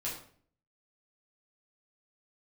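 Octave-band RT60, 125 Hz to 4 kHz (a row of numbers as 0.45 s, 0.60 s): 0.70 s, 0.65 s, 0.55 s, 0.45 s, 0.45 s, 0.40 s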